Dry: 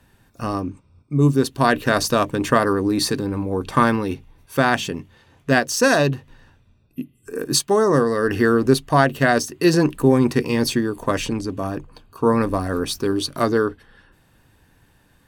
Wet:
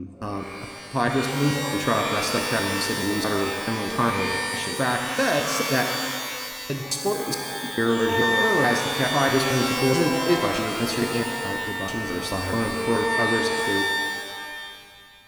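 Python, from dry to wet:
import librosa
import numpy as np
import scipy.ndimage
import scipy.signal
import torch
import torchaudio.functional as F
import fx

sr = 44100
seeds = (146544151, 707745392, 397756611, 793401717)

y = fx.block_reorder(x, sr, ms=216.0, group=4)
y = fx.rev_shimmer(y, sr, seeds[0], rt60_s=1.9, semitones=12, shimmer_db=-2, drr_db=3.0)
y = F.gain(torch.from_numpy(y), -7.0).numpy()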